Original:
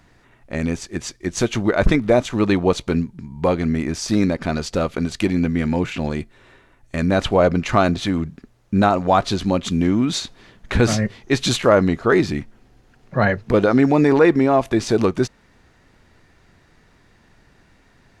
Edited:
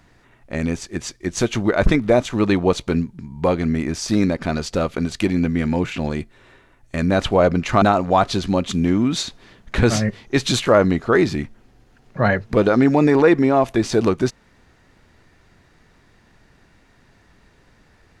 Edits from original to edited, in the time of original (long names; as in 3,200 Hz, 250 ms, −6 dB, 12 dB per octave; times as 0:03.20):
0:07.82–0:08.79: remove